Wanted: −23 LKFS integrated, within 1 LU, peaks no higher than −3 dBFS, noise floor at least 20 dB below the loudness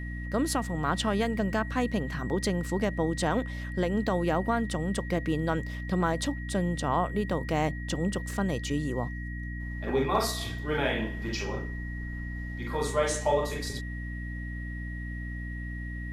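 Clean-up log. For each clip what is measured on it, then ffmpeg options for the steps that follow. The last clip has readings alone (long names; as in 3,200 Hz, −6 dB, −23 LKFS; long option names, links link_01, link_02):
mains hum 60 Hz; hum harmonics up to 300 Hz; level of the hum −34 dBFS; interfering tone 1,900 Hz; level of the tone −42 dBFS; integrated loudness −30.5 LKFS; sample peak −14.0 dBFS; target loudness −23.0 LKFS
→ -af "bandreject=frequency=60:width_type=h:width=4,bandreject=frequency=120:width_type=h:width=4,bandreject=frequency=180:width_type=h:width=4,bandreject=frequency=240:width_type=h:width=4,bandreject=frequency=300:width_type=h:width=4"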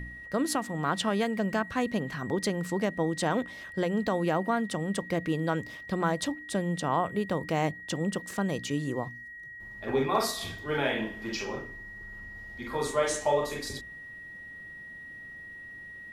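mains hum none found; interfering tone 1,900 Hz; level of the tone −42 dBFS
→ -af "bandreject=frequency=1900:width=30"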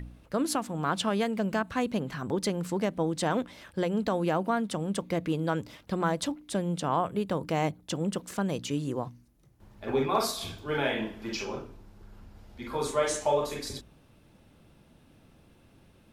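interfering tone none found; integrated loudness −30.5 LKFS; sample peak −14.5 dBFS; target loudness −23.0 LKFS
→ -af "volume=7.5dB"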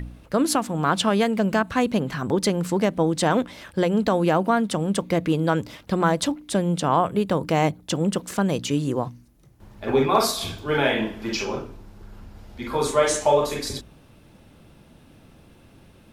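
integrated loudness −23.0 LKFS; sample peak −7.0 dBFS; background noise floor −52 dBFS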